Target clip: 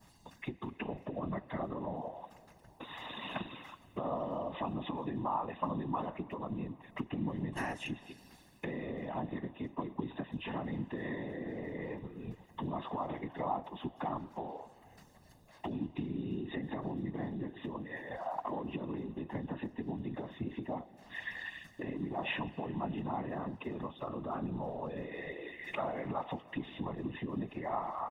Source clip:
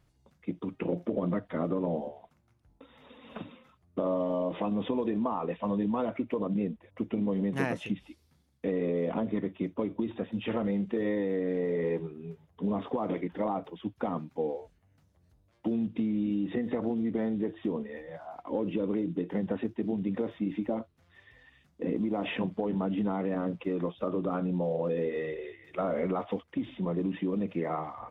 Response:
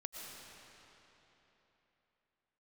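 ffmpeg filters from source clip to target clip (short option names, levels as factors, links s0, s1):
-filter_complex "[0:a]adynamicequalizer=threshold=0.002:dfrequency=2500:dqfactor=0.88:tfrequency=2500:tqfactor=0.88:attack=5:release=100:ratio=0.375:range=2.5:mode=cutabove:tftype=bell,acompressor=threshold=0.00282:ratio=2.5,highpass=f=430:p=1,aecho=1:1:1.1:0.66,asplit=2[s0][s1];[1:a]atrim=start_sample=2205,asetrate=52920,aresample=44100[s2];[s1][s2]afir=irnorm=-1:irlink=0,volume=0.266[s3];[s0][s3]amix=inputs=2:normalize=0,afftfilt=real='hypot(re,im)*cos(2*PI*random(0))':imag='hypot(re,im)*sin(2*PI*random(1))':win_size=512:overlap=0.75,asplit=2[s4][s5];[s5]adelay=326.5,volume=0.0398,highshelf=f=4000:g=-7.35[s6];[s4][s6]amix=inputs=2:normalize=0,volume=7.5"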